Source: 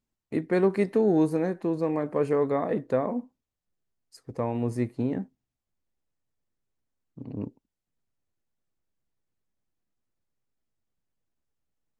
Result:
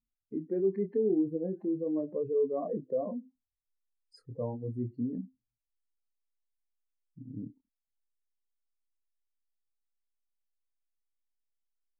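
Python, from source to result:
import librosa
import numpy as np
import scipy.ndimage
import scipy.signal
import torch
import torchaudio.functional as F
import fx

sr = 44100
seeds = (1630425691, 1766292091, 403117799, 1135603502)

y = fx.spec_expand(x, sr, power=2.4)
y = fx.chorus_voices(y, sr, voices=4, hz=0.78, base_ms=25, depth_ms=2.0, mix_pct=30)
y = F.gain(torch.from_numpy(y), -3.5).numpy()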